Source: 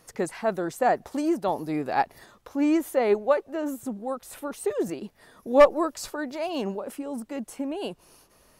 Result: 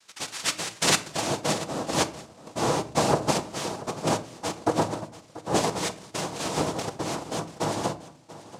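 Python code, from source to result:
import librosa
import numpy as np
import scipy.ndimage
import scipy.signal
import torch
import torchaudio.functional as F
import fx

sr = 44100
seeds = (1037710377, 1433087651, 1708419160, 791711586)

p1 = fx.lower_of_two(x, sr, delay_ms=2.4)
p2 = fx.peak_eq(p1, sr, hz=1200.0, db=11.5, octaves=1.9)
p3 = fx.rider(p2, sr, range_db=4, speed_s=2.0)
p4 = p2 + (p3 * 10.0 ** (3.0 / 20.0))
p5 = 10.0 ** (-4.5 / 20.0) * (np.abs((p4 / 10.0 ** (-4.5 / 20.0) + 3.0) % 4.0 - 2.0) - 1.0)
p6 = fx.filter_sweep_bandpass(p5, sr, from_hz=2000.0, to_hz=560.0, start_s=0.48, end_s=1.52, q=2.7)
p7 = fx.noise_vocoder(p6, sr, seeds[0], bands=2)
p8 = p7 + fx.echo_single(p7, sr, ms=686, db=-17.0, dry=0)
p9 = fx.room_shoebox(p8, sr, seeds[1], volume_m3=600.0, walls='furnished', distance_m=0.66)
y = p9 * 10.0 ** (-5.5 / 20.0)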